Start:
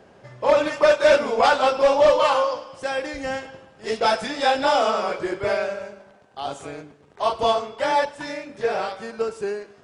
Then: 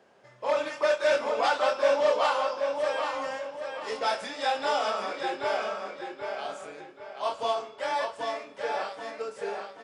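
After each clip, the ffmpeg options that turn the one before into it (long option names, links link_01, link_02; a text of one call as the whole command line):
ffmpeg -i in.wav -filter_complex "[0:a]highpass=frequency=460:poles=1,asplit=2[link_01][link_02];[link_02]adelay=25,volume=-8.5dB[link_03];[link_01][link_03]amix=inputs=2:normalize=0,asplit=2[link_04][link_05];[link_05]adelay=781,lowpass=frequency=4900:poles=1,volume=-4.5dB,asplit=2[link_06][link_07];[link_07]adelay=781,lowpass=frequency=4900:poles=1,volume=0.37,asplit=2[link_08][link_09];[link_09]adelay=781,lowpass=frequency=4900:poles=1,volume=0.37,asplit=2[link_10][link_11];[link_11]adelay=781,lowpass=frequency=4900:poles=1,volume=0.37,asplit=2[link_12][link_13];[link_13]adelay=781,lowpass=frequency=4900:poles=1,volume=0.37[link_14];[link_06][link_08][link_10][link_12][link_14]amix=inputs=5:normalize=0[link_15];[link_04][link_15]amix=inputs=2:normalize=0,volume=-7.5dB" out.wav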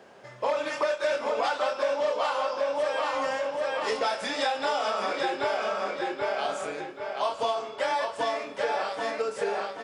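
ffmpeg -i in.wav -af "acompressor=threshold=-33dB:ratio=6,volume=8.5dB" out.wav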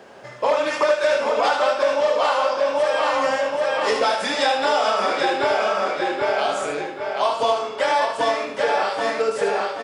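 ffmpeg -i in.wav -af "aecho=1:1:76:0.473,volume=7dB" out.wav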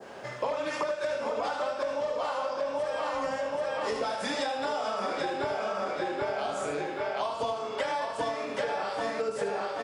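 ffmpeg -i in.wav -filter_complex "[0:a]adynamicequalizer=threshold=0.0224:dfrequency=2700:dqfactor=0.74:tfrequency=2700:tqfactor=0.74:attack=5:release=100:ratio=0.375:range=2:mode=cutabove:tftype=bell,acrossover=split=190[link_01][link_02];[link_02]acompressor=threshold=-29dB:ratio=6[link_03];[link_01][link_03]amix=inputs=2:normalize=0" out.wav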